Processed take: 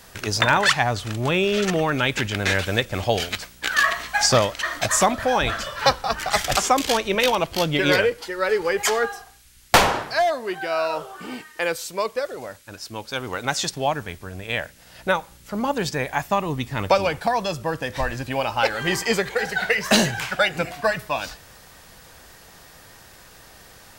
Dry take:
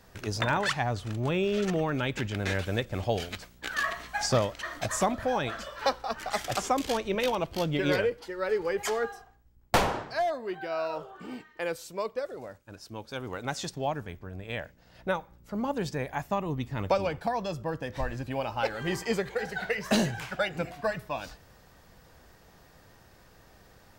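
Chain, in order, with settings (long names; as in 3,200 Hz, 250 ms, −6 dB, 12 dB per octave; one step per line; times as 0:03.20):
0:05.40–0:06.57: sub-octave generator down 2 octaves, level +2 dB
noise in a band 1,300–13,000 Hz −67 dBFS
tilt shelving filter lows −4 dB, about 820 Hz
level +8.5 dB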